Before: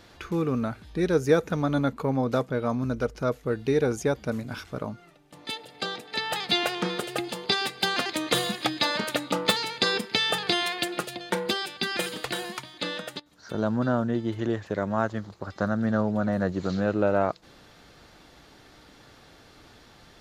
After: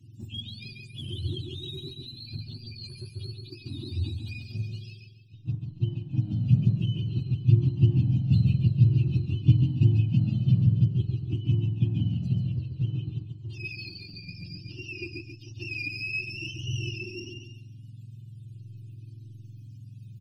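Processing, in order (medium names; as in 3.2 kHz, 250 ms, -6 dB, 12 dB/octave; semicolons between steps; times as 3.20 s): spectrum inverted on a logarithmic axis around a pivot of 740 Hz; brick-wall FIR band-stop 380–2400 Hz; peaking EQ 110 Hz +13 dB 0.71 oct; in parallel at -8.5 dB: hysteresis with a dead band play -27.5 dBFS; on the sum: treble shelf 10 kHz -6.5 dB; hum notches 50/100/150 Hz; on a send: feedback delay 139 ms, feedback 37%, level -5.5 dB; on the sum: Shepard-style flanger falling 0.52 Hz; trim -3 dB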